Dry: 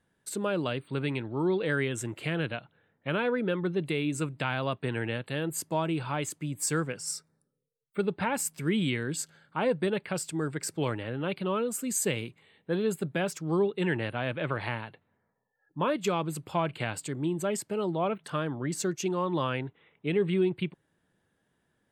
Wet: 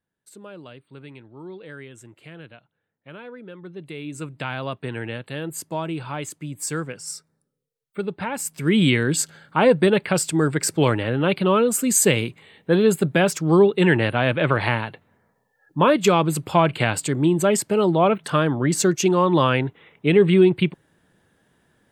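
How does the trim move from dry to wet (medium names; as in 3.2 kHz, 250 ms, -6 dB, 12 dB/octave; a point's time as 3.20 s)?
3.52 s -11 dB
4.43 s +1.5 dB
8.37 s +1.5 dB
8.84 s +11.5 dB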